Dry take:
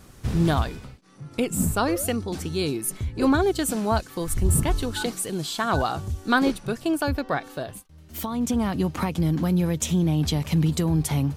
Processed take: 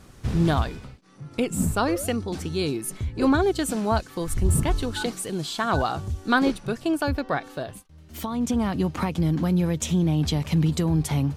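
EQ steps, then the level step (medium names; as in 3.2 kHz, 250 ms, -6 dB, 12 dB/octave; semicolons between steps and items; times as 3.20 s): treble shelf 11 kHz -9.5 dB; 0.0 dB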